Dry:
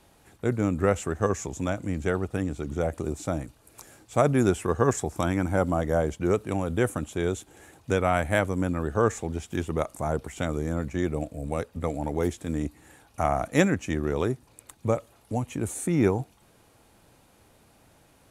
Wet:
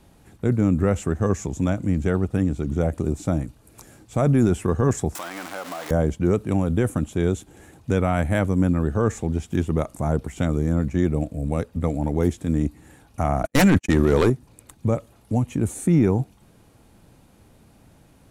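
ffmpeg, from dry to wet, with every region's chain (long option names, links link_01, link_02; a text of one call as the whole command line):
ffmpeg -i in.wav -filter_complex "[0:a]asettb=1/sr,asplit=3[link_01][link_02][link_03];[link_01]atrim=end=5.154[link_04];[link_02]atrim=start=5.15:end=5.91,asetpts=PTS-STARTPTS,afade=type=in:duration=0.004:curve=qsin,afade=type=out:start_time=0.756:duration=0.004:curve=qsin,aeval=exprs='val(0)+0.5*0.0596*sgn(val(0))':channel_layout=same,highpass=820,acompressor=threshold=-29dB:ratio=4:attack=3.2:release=140:knee=1:detection=peak[link_05];[link_03]atrim=start=5.906[link_06];[link_04][link_05]acrossfade=duration=0.004:curve1=hsin:curve2=qsin[link_07];[link_07][link_06]acrossfade=duration=0.004:curve1=qsin:curve2=hsin,asettb=1/sr,asplit=3[link_08][link_09][link_10];[link_08]atrim=end=13.434[link_11];[link_09]atrim=start=13.43:end=14.3,asetpts=PTS-STARTPTS,afade=type=in:duration=0.004:curve=qsin,afade=type=out:start_time=0.866:duration=0.004:curve=qsin,lowshelf=frequency=440:gain=-7.5,aeval=exprs='0.316*sin(PI/2*3.98*val(0)/0.316)':channel_layout=same,agate=range=-52dB:threshold=-22dB:ratio=16:release=100:detection=peak[link_12];[link_10]atrim=start=14.296[link_13];[link_11][link_12]acrossfade=duration=0.004:curve1=hsin:curve2=qsin[link_14];[link_14][link_13]acrossfade=duration=0.004:curve1=qsin:curve2=hsin,equalizer=frequency=200:width_type=o:width=1.7:gain=7,alimiter=limit=-11dB:level=0:latency=1:release=12,lowshelf=frequency=100:gain=10" out.wav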